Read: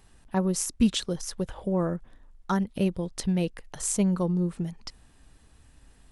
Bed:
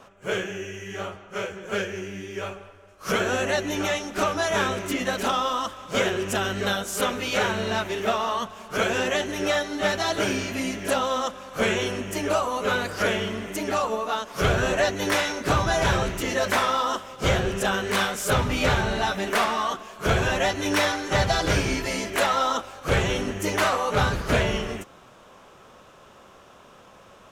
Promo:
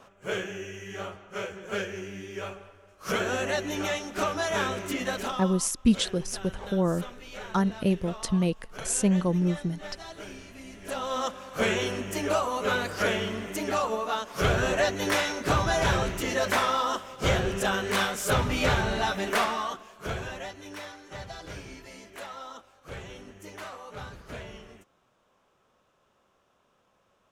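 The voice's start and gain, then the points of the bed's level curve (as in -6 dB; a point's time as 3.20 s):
5.05 s, +1.0 dB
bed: 5.16 s -4 dB
5.61 s -17.5 dB
10.65 s -17.5 dB
11.23 s -2.5 dB
19.38 s -2.5 dB
20.73 s -18.5 dB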